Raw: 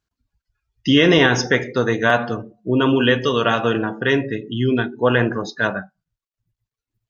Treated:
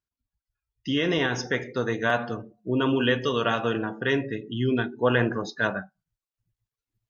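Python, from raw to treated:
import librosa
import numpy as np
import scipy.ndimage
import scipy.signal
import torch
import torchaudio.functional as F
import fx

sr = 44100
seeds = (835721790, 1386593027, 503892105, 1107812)

y = fx.rider(x, sr, range_db=10, speed_s=2.0)
y = F.gain(torch.from_numpy(y), -8.0).numpy()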